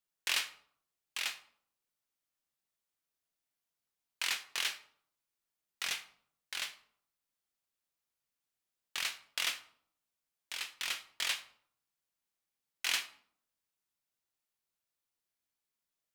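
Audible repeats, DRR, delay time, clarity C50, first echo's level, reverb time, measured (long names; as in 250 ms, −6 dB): no echo audible, 9.0 dB, no echo audible, 14.5 dB, no echo audible, 0.60 s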